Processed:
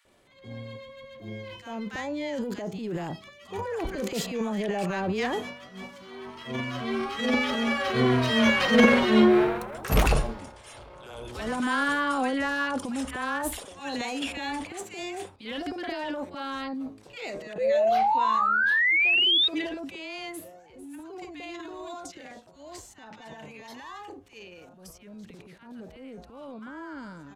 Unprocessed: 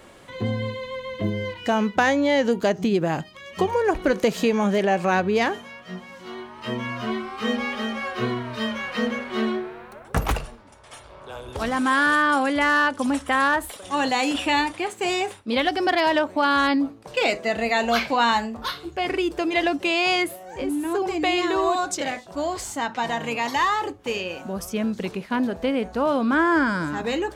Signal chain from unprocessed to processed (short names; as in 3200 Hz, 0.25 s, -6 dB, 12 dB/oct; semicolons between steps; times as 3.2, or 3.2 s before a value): Doppler pass-by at 8.78, 13 m/s, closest 9.3 m; painted sound rise, 17.53–19.48, 490–3800 Hz -29 dBFS; transient shaper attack -9 dB, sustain +10 dB; bands offset in time highs, lows 50 ms, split 1200 Hz; gain +8 dB